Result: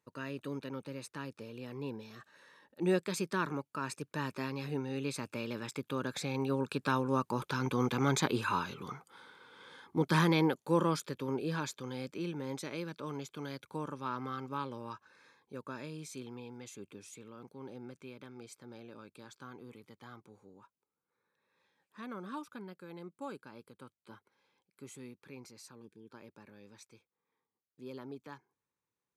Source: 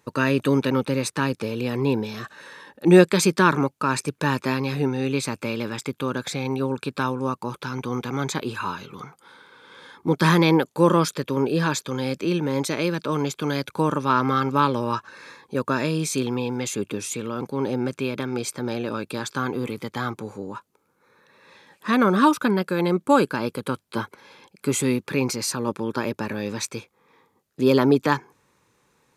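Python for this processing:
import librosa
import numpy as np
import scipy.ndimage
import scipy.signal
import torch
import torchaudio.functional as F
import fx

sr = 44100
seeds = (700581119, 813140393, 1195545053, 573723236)

y = fx.doppler_pass(x, sr, speed_mps=6, closest_m=6.6, pass_at_s=8.04)
y = fx.spec_box(y, sr, start_s=25.82, length_s=0.29, low_hz=480.0, high_hz=1500.0, gain_db=-18)
y = y * 10.0 ** (-3.0 / 20.0)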